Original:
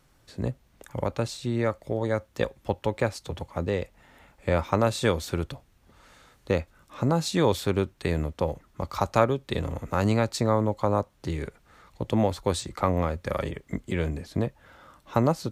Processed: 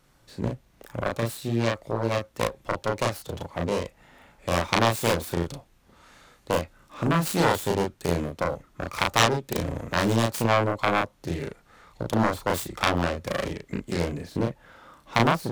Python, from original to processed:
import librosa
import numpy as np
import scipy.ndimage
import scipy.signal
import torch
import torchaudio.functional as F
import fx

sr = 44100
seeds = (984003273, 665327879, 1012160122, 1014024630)

y = fx.self_delay(x, sr, depth_ms=0.98)
y = fx.peak_eq(y, sr, hz=71.0, db=-9.0, octaves=0.59)
y = fx.doubler(y, sr, ms=35.0, db=-2)